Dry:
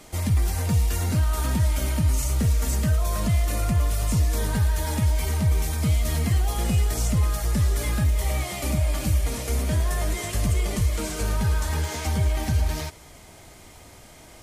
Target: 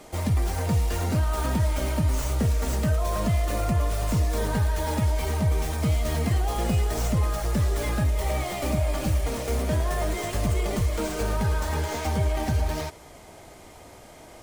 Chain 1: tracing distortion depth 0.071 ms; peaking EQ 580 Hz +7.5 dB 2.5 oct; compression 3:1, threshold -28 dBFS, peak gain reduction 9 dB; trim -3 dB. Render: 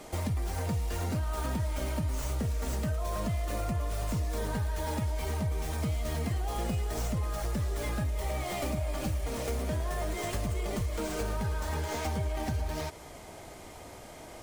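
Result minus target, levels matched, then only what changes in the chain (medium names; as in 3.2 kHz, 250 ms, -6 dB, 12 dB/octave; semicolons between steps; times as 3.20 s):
compression: peak gain reduction +9 dB
remove: compression 3:1, threshold -28 dBFS, peak gain reduction 9 dB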